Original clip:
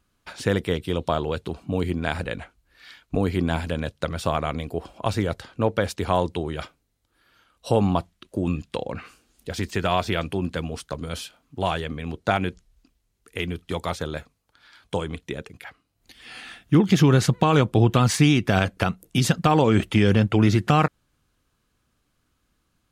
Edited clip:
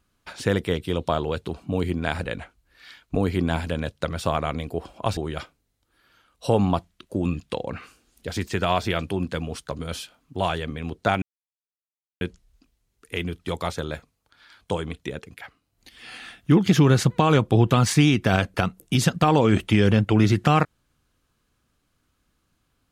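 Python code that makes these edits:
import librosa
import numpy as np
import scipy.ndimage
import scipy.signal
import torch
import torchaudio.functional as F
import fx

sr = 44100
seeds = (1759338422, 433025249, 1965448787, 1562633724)

y = fx.edit(x, sr, fx.cut(start_s=5.17, length_s=1.22),
    fx.insert_silence(at_s=12.44, length_s=0.99), tone=tone)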